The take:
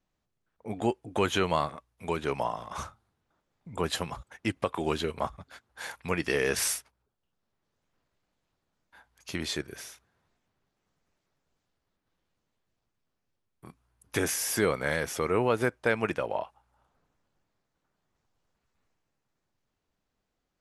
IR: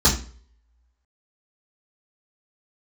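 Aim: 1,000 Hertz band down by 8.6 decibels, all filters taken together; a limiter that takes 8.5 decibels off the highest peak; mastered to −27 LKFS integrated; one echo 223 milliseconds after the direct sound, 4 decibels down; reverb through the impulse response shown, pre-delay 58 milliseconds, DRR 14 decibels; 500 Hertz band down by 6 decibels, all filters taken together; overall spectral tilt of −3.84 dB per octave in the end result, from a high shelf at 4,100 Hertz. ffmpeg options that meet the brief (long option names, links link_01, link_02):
-filter_complex "[0:a]equalizer=frequency=500:width_type=o:gain=-5.5,equalizer=frequency=1000:width_type=o:gain=-9,highshelf=frequency=4100:gain=-4.5,alimiter=limit=-23.5dB:level=0:latency=1,aecho=1:1:223:0.631,asplit=2[link_01][link_02];[1:a]atrim=start_sample=2205,adelay=58[link_03];[link_02][link_03]afir=irnorm=-1:irlink=0,volume=-32dB[link_04];[link_01][link_04]amix=inputs=2:normalize=0,volume=9dB"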